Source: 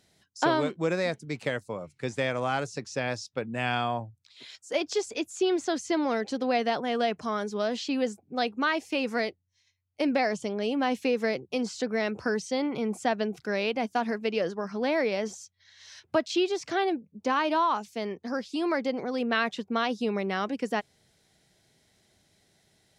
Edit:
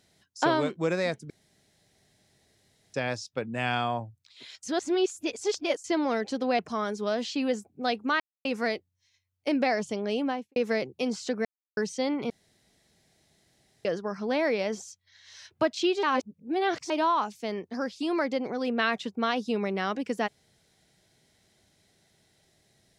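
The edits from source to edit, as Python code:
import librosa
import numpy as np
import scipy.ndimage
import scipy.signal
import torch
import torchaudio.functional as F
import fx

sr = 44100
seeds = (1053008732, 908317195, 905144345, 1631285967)

y = fx.studio_fade_out(x, sr, start_s=10.71, length_s=0.38)
y = fx.edit(y, sr, fx.room_tone_fill(start_s=1.3, length_s=1.64),
    fx.reverse_span(start_s=4.63, length_s=1.21),
    fx.cut(start_s=6.59, length_s=0.53),
    fx.silence(start_s=8.73, length_s=0.25),
    fx.silence(start_s=11.98, length_s=0.32),
    fx.room_tone_fill(start_s=12.83, length_s=1.55),
    fx.reverse_span(start_s=16.56, length_s=0.87), tone=tone)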